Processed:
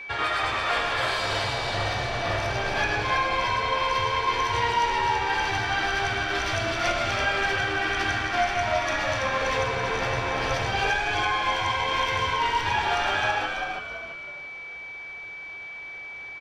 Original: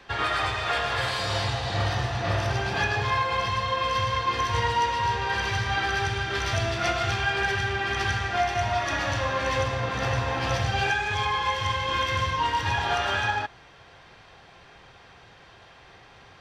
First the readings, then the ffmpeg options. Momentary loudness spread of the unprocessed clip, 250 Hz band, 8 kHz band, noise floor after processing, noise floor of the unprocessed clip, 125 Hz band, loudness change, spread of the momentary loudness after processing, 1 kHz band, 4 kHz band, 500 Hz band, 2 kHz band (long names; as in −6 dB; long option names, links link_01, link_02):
2 LU, 0.0 dB, +0.5 dB, −39 dBFS, −51 dBFS, −5.5 dB, +1.0 dB, 12 LU, +1.0 dB, +1.0 dB, +1.5 dB, +2.0 dB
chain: -filter_complex "[0:a]bass=frequency=250:gain=-6,treble=frequency=4000:gain=-1,asplit=5[link_01][link_02][link_03][link_04][link_05];[link_02]adelay=332,afreqshift=-82,volume=-5dB[link_06];[link_03]adelay=664,afreqshift=-164,volume=-13.9dB[link_07];[link_04]adelay=996,afreqshift=-246,volume=-22.7dB[link_08];[link_05]adelay=1328,afreqshift=-328,volume=-31.6dB[link_09];[link_01][link_06][link_07][link_08][link_09]amix=inputs=5:normalize=0,aeval=exprs='val(0)+0.0158*sin(2*PI*2300*n/s)':channel_layout=same"